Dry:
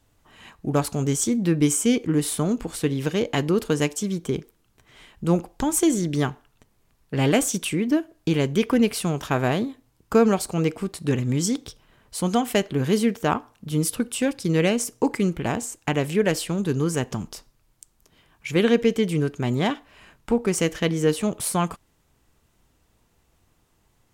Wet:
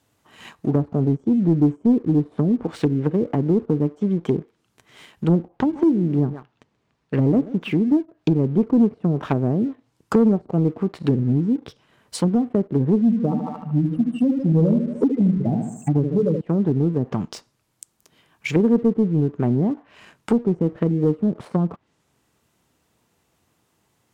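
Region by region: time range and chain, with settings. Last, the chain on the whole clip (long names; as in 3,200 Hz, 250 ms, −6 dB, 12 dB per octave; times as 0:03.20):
0:05.56–0:07.76: high-frequency loss of the air 120 metres + single-tap delay 131 ms −18 dB
0:13.01–0:16.41: expanding power law on the bin magnitudes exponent 3.4 + repeating echo 75 ms, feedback 50%, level −6 dB
whole clip: high-pass filter 120 Hz 12 dB per octave; treble cut that deepens with the level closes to 340 Hz, closed at −20 dBFS; leveller curve on the samples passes 1; level +2.5 dB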